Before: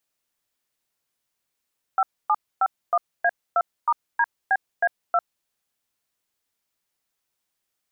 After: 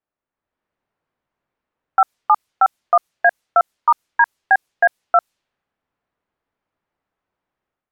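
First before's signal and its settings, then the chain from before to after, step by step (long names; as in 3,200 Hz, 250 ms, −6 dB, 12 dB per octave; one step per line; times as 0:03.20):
touch tones "5751A2*DBA2", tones 50 ms, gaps 266 ms, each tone −19 dBFS
low-pass that shuts in the quiet parts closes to 1,400 Hz, open at −22.5 dBFS
automatic gain control gain up to 9 dB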